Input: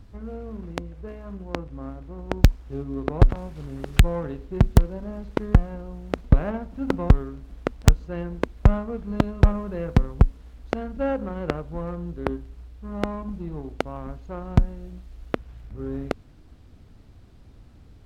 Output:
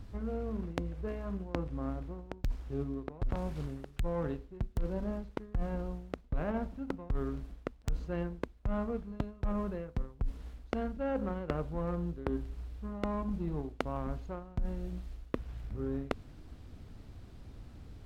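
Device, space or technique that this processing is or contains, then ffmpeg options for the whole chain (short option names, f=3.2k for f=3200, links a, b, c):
compression on the reversed sound: -af "areverse,acompressor=threshold=-30dB:ratio=12,areverse"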